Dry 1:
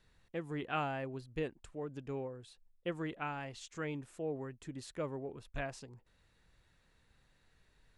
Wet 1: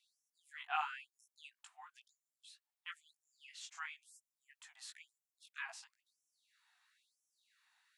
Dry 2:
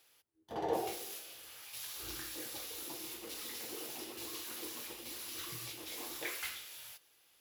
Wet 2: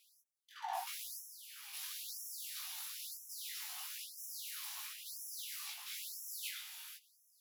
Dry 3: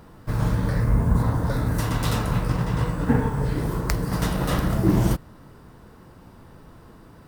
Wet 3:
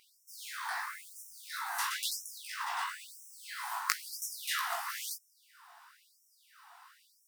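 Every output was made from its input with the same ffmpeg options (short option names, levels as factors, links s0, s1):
-af "flanger=delay=17.5:depth=2:speed=3,afftfilt=real='re*gte(b*sr/1024,660*pow(5400/660,0.5+0.5*sin(2*PI*1*pts/sr)))':imag='im*gte(b*sr/1024,660*pow(5400/660,0.5+0.5*sin(2*PI*1*pts/sr)))':win_size=1024:overlap=0.75,volume=1.41"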